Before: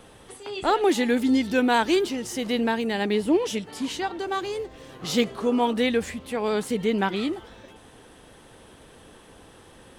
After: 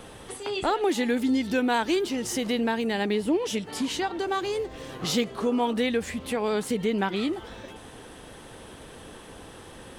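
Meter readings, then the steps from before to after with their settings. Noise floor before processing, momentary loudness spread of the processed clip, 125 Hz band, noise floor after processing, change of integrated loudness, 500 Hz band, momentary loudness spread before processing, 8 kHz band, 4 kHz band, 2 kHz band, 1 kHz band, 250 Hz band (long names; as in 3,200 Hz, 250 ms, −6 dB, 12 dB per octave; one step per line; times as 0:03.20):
−51 dBFS, 20 LU, −0.5 dB, −46 dBFS, −2.5 dB, −2.0 dB, 10 LU, +1.0 dB, −1.0 dB, −2.0 dB, −2.5 dB, −2.0 dB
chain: downward compressor 2 to 1, threshold −33 dBFS, peak gain reduction 9.5 dB
level +5 dB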